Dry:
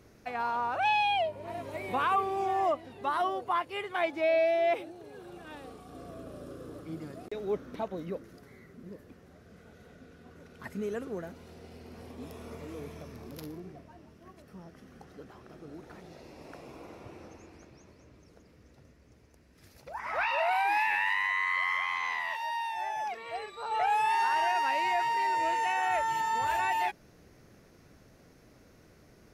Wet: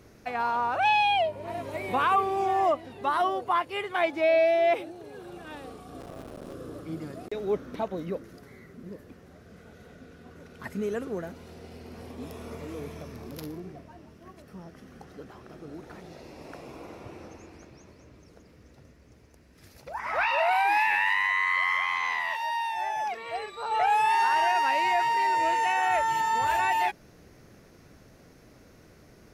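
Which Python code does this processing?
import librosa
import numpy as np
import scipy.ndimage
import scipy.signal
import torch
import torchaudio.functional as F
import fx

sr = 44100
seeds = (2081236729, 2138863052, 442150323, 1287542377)

y = fx.cycle_switch(x, sr, every=3, mode='muted', at=(6.0, 6.53))
y = F.gain(torch.from_numpy(y), 4.0).numpy()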